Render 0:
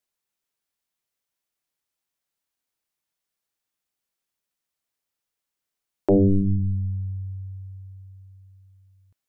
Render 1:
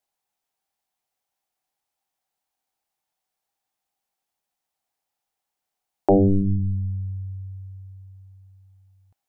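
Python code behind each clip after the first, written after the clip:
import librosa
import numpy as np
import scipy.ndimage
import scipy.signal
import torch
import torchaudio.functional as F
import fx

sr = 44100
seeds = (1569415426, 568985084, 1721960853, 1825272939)

y = fx.peak_eq(x, sr, hz=780.0, db=14.5, octaves=0.44)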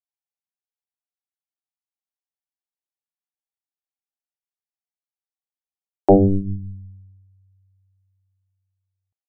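y = fx.upward_expand(x, sr, threshold_db=-32.0, expansion=2.5)
y = y * librosa.db_to_amplitude(5.5)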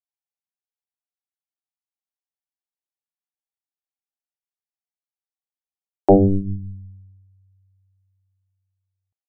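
y = x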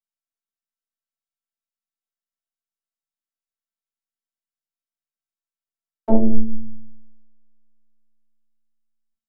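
y = fx.robotise(x, sr, hz=223.0)
y = fx.room_flutter(y, sr, wall_m=7.8, rt60_s=0.21)
y = fx.room_shoebox(y, sr, seeds[0], volume_m3=220.0, walls='furnished', distance_m=2.8)
y = y * librosa.db_to_amplitude(-7.5)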